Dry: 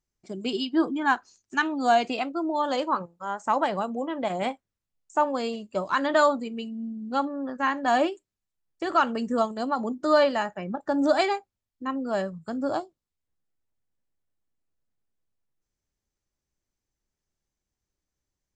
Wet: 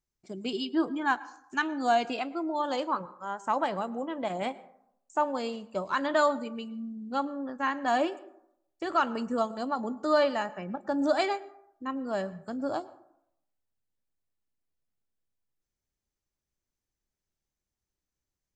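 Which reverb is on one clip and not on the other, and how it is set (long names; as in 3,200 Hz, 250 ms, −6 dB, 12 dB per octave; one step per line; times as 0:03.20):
dense smooth reverb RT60 0.74 s, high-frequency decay 0.4×, pre-delay 95 ms, DRR 18.5 dB
level −4 dB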